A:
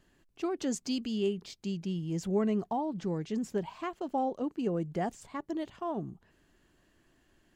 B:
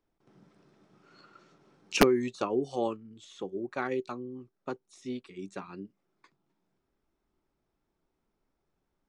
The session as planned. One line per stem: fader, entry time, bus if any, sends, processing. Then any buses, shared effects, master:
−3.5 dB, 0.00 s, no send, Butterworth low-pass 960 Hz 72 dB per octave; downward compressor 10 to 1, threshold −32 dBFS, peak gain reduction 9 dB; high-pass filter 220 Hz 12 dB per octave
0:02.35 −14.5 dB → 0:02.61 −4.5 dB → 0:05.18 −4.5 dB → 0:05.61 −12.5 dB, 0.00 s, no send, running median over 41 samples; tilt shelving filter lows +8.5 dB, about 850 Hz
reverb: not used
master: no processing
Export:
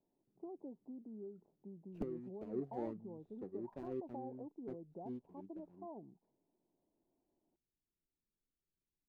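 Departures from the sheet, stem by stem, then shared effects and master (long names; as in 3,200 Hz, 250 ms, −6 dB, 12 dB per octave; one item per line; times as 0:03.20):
stem A −3.5 dB → −12.0 dB
stem B −14.5 dB → −25.0 dB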